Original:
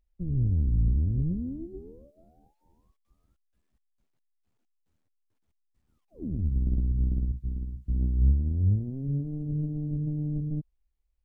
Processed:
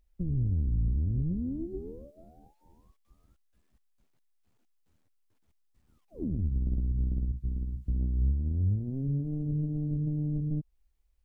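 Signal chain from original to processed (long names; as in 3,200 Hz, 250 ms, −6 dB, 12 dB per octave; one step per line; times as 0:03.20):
downward compressor 2 to 1, threshold −37 dBFS, peak gain reduction 11 dB
level +5 dB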